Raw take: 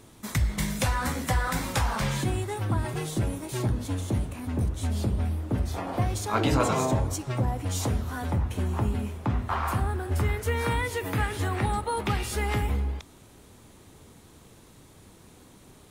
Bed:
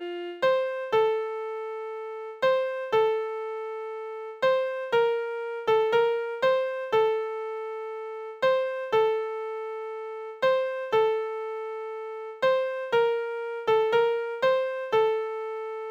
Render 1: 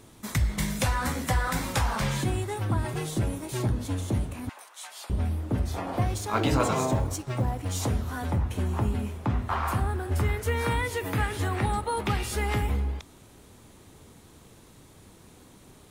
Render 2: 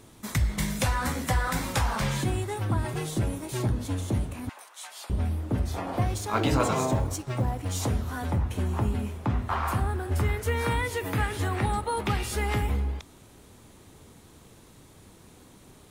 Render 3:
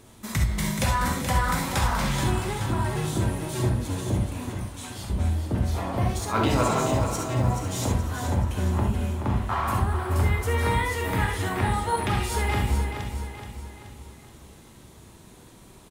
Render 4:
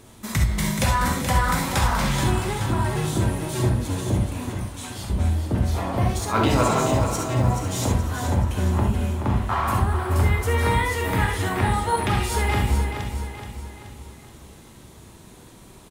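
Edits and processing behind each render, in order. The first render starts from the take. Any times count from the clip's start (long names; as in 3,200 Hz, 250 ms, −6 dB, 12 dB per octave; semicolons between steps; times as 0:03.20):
0:04.49–0:05.10: high-pass filter 860 Hz 24 dB per octave; 0:06.14–0:07.82: mu-law and A-law mismatch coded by A
0:01.94–0:02.38: floating-point word with a short mantissa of 6 bits
repeating echo 427 ms, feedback 47%, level −8 dB; reverb whose tail is shaped and stops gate 90 ms rising, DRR 2.5 dB
level +3 dB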